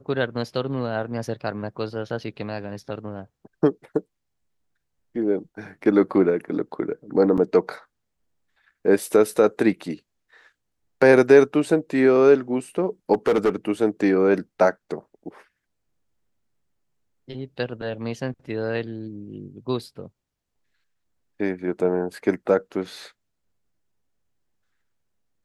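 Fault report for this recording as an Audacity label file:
7.370000	7.380000	dropout 7.5 ms
13.130000	13.500000	clipped -14.5 dBFS

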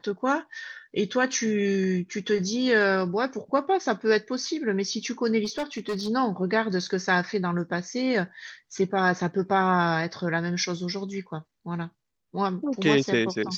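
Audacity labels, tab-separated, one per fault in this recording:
5.440000	6.090000	clipped -25 dBFS

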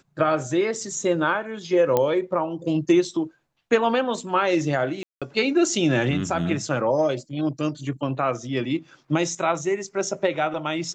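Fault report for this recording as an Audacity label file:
1.970000	1.970000	pop -8 dBFS
5.030000	5.220000	dropout 186 ms

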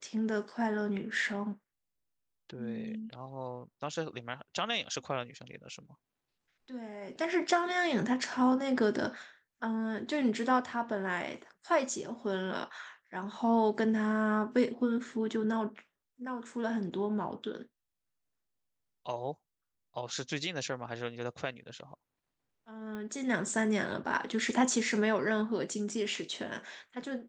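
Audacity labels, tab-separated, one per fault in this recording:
22.950000	22.950000	pop -29 dBFS

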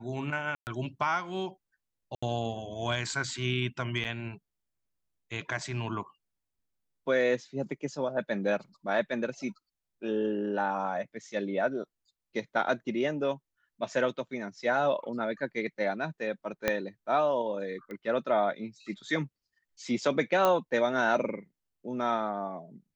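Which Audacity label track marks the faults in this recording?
0.550000	0.670000	dropout 119 ms
2.150000	2.230000	dropout 75 ms
4.040000	4.050000	dropout 8.4 ms
16.680000	16.680000	pop -11 dBFS
17.910000	17.910000	pop -29 dBFS
20.450000	20.450000	pop -12 dBFS

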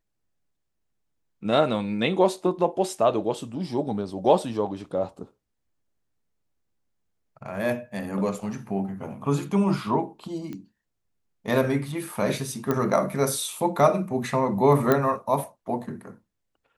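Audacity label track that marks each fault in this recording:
10.530000	10.530000	pop -24 dBFS
12.710000	12.710000	pop -12 dBFS
14.920000	14.920000	pop -8 dBFS

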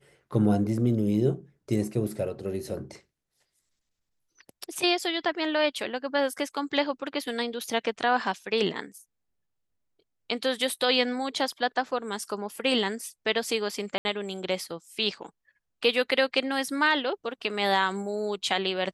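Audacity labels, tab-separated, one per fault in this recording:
13.980000	14.050000	dropout 70 ms

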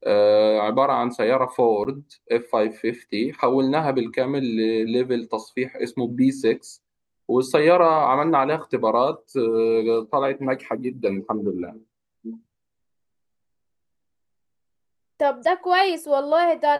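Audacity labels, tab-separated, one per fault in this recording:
1.840000	1.850000	dropout 9.5 ms

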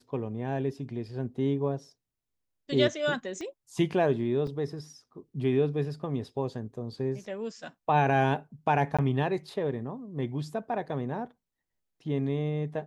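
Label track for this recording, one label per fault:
3.410000	3.410000	pop -27 dBFS
4.470000	4.470000	dropout 2.7 ms
8.970000	8.990000	dropout 16 ms

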